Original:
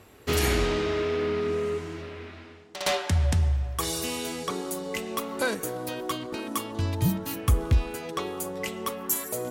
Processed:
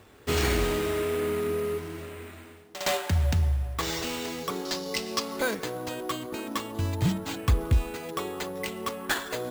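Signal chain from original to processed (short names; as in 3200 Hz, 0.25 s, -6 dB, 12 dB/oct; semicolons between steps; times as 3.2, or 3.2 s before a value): careless resampling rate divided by 4×, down none, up hold; 4.65–5.39 bell 5000 Hz +14 dB 0.73 oct; gain -1 dB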